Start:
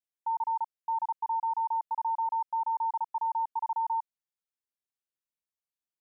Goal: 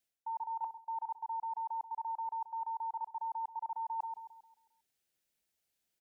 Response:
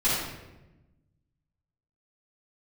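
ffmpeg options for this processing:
-filter_complex "[0:a]equalizer=f=1100:w=3.7:g=-11,asplit=2[s0][s1];[s1]adelay=134,lowpass=f=930:p=1,volume=0.251,asplit=2[s2][s3];[s3]adelay=134,lowpass=f=930:p=1,volume=0.55,asplit=2[s4][s5];[s5]adelay=134,lowpass=f=930:p=1,volume=0.55,asplit=2[s6][s7];[s7]adelay=134,lowpass=f=930:p=1,volume=0.55,asplit=2[s8][s9];[s9]adelay=134,lowpass=f=930:p=1,volume=0.55,asplit=2[s10][s11];[s11]adelay=134,lowpass=f=930:p=1,volume=0.55[s12];[s0][s2][s4][s6][s8][s10][s12]amix=inputs=7:normalize=0,areverse,acompressor=threshold=0.00447:ratio=16,areverse,volume=3.55"

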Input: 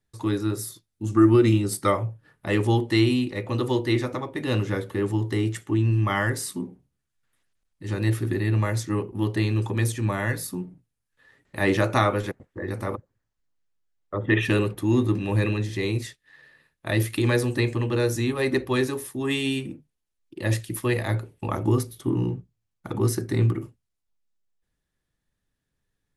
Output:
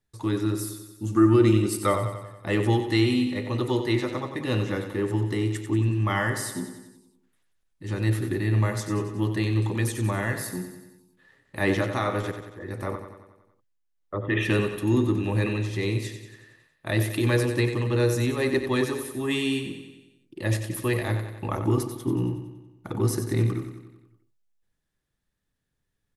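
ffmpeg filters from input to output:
-filter_complex "[0:a]asettb=1/sr,asplit=3[s0][s1][s2];[s0]atrim=end=11.634[s3];[s1]atrim=start=11.63:end=14.35,asetpts=PTS-STARTPTS,afade=t=in:d=0.004:c=qsin,afade=t=out:st=2.716:d=0.004:c=qsin,tremolo=f=1.6:d=0.5[s4];[s2]atrim=start=14.346[s5];[s3][s4]acrossfade=d=0.004:c1=hsin:c2=qsin[s6];[s6][s5]acrossfade=d=0.004:c1=qsin:c2=hsin,aecho=1:1:92|184|276|368|460|552|644:0.355|0.202|0.115|0.0657|0.0375|0.0213|0.0122,volume=0.841"

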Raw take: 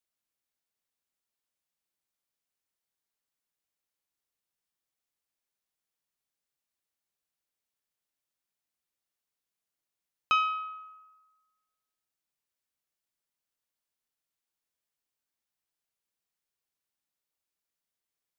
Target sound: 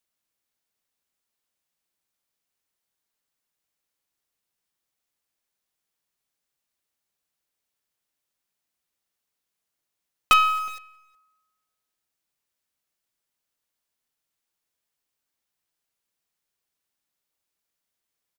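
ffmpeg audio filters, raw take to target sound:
-filter_complex "[0:a]asplit=2[s0][s1];[s1]acrusher=bits=4:dc=4:mix=0:aa=0.000001,volume=0.631[s2];[s0][s2]amix=inputs=2:normalize=0,asplit=2[s3][s4];[s4]adelay=367.3,volume=0.0708,highshelf=f=4000:g=-8.27[s5];[s3][s5]amix=inputs=2:normalize=0,volume=1.88"

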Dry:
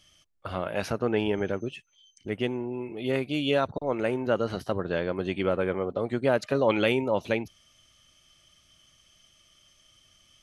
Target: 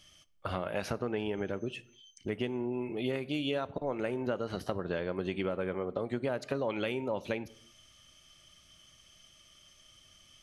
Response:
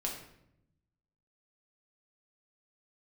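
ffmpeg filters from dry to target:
-filter_complex "[0:a]acompressor=threshold=0.0282:ratio=6,asplit=2[s0][s1];[1:a]atrim=start_sample=2205,afade=t=out:st=0.37:d=0.01,atrim=end_sample=16758[s2];[s1][s2]afir=irnorm=-1:irlink=0,volume=0.158[s3];[s0][s3]amix=inputs=2:normalize=0"

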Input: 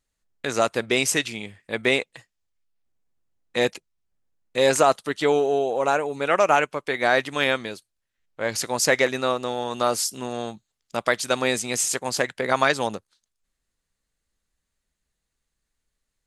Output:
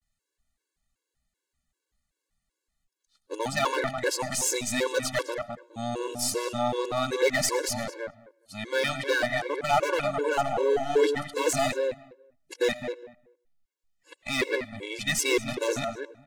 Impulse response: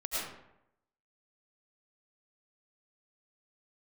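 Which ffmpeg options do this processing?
-filter_complex "[0:a]areverse,volume=7.08,asoftclip=hard,volume=0.141,aeval=exprs='0.15*(cos(1*acos(clip(val(0)/0.15,-1,1)))-cos(1*PI/2))+0.0106*(cos(4*acos(clip(val(0)/0.15,-1,1)))-cos(4*PI/2))':c=same,asplit=2[s0][s1];[s1]adelay=207,lowpass=f=1500:p=1,volume=0.501,asplit=2[s2][s3];[s3]adelay=207,lowpass=f=1500:p=1,volume=0.18,asplit=2[s4][s5];[s5]adelay=207,lowpass=f=1500:p=1,volume=0.18[s6];[s0][s2][s4][s6]amix=inputs=4:normalize=0,asplit=2[s7][s8];[1:a]atrim=start_sample=2205,atrim=end_sample=6615[s9];[s8][s9]afir=irnorm=-1:irlink=0,volume=0.1[s10];[s7][s10]amix=inputs=2:normalize=0,afftfilt=real='re*gt(sin(2*PI*2.6*pts/sr)*(1-2*mod(floor(b*sr/1024/290),2)),0)':imag='im*gt(sin(2*PI*2.6*pts/sr)*(1-2*mod(floor(b*sr/1024/290),2)),0)':win_size=1024:overlap=0.75"

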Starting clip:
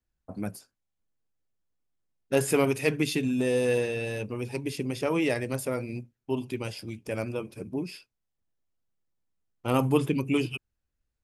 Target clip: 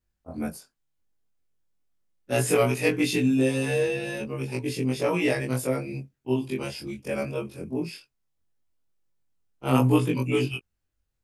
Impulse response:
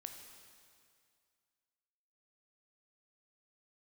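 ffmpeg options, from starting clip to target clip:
-af "afftfilt=real='re':imag='-im':win_size=2048:overlap=0.75,volume=2.24"

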